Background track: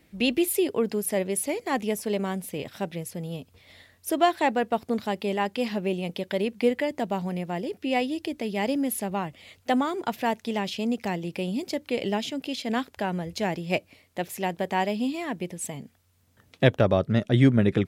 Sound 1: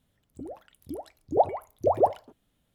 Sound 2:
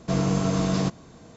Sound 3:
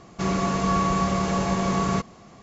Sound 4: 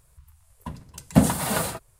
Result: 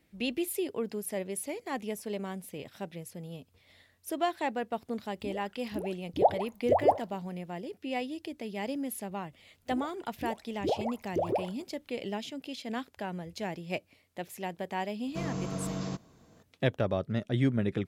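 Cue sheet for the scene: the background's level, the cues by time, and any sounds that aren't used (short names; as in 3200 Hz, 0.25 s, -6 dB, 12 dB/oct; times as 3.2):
background track -8.5 dB
4.85 add 1 -2 dB
9.32 add 1 -1.5 dB + compressor, threshold -24 dBFS
15.07 add 2 -11.5 dB
not used: 3, 4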